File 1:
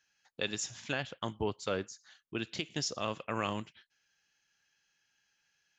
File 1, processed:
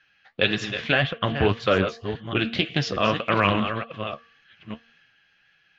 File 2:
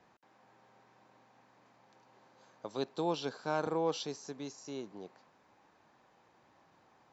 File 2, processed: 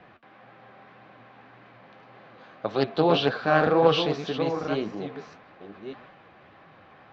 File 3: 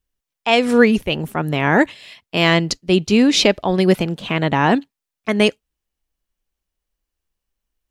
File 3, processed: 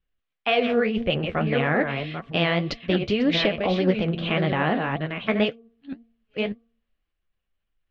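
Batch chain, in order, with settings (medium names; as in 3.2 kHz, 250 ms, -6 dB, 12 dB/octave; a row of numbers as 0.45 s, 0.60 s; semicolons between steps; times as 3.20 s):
chunks repeated in reverse 593 ms, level -9.5 dB; low-pass 3.4 kHz 24 dB/octave; peaking EQ 350 Hz -3.5 dB 1.4 oct; band-stop 910 Hz, Q 5; de-hum 230 Hz, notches 5; dynamic bell 520 Hz, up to +5 dB, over -33 dBFS, Q 2.2; transient shaper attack 0 dB, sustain +4 dB; compression 6:1, threshold -18 dBFS; flange 1.8 Hz, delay 5.1 ms, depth 9.4 ms, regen +46%; loudspeaker Doppler distortion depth 0.16 ms; normalise loudness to -24 LUFS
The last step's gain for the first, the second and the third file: +19.5 dB, +19.5 dB, +3.5 dB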